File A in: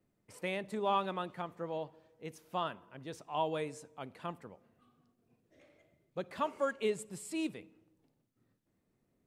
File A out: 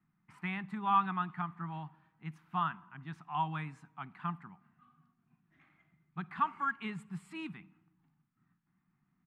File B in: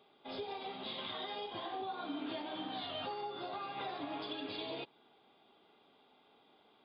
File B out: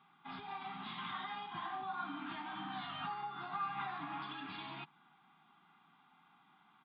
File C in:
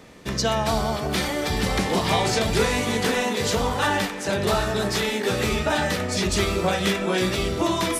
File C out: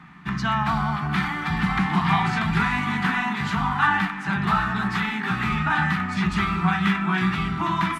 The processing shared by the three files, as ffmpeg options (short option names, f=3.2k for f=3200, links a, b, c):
-af "firequalizer=gain_entry='entry(110,0);entry(160,15);entry(230,4);entry(370,-6);entry(520,-29);entry(740,4);entry(1200,13);entry(3400,-1);entry(5500,-11);entry(11000,-13)':delay=0.05:min_phase=1,volume=-5.5dB"